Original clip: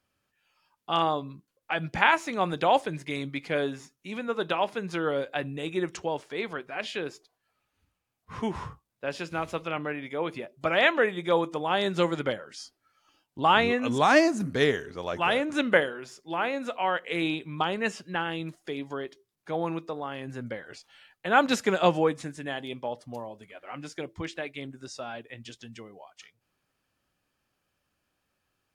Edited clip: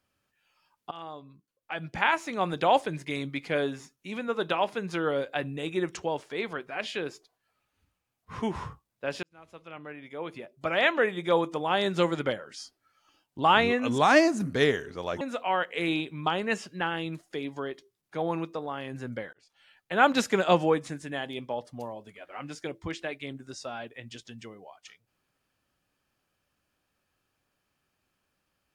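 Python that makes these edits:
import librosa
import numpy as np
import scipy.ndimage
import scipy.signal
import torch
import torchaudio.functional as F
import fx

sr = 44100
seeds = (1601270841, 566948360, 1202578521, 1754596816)

y = fx.edit(x, sr, fx.fade_in_from(start_s=0.91, length_s=1.8, floor_db=-21.0),
    fx.fade_in_span(start_s=9.23, length_s=2.02),
    fx.cut(start_s=15.21, length_s=1.34),
    fx.fade_in_span(start_s=20.67, length_s=0.61), tone=tone)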